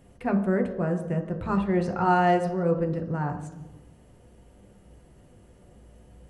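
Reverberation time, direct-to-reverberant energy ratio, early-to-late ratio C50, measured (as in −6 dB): 1.1 s, 3.5 dB, 9.5 dB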